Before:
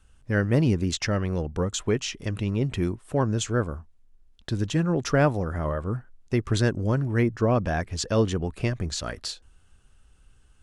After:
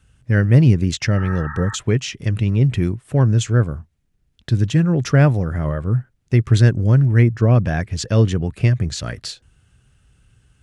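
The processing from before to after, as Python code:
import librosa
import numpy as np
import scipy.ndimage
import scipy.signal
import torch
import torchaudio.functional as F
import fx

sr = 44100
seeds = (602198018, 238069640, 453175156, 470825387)

y = fx.graphic_eq_10(x, sr, hz=(125, 1000, 2000), db=(11, -4, 4))
y = fx.spec_repair(y, sr, seeds[0], start_s=1.19, length_s=0.53, low_hz=800.0, high_hz=1900.0, source='before')
y = scipy.signal.sosfilt(scipy.signal.butter(2, 43.0, 'highpass', fs=sr, output='sos'), y)
y = y * librosa.db_to_amplitude(2.5)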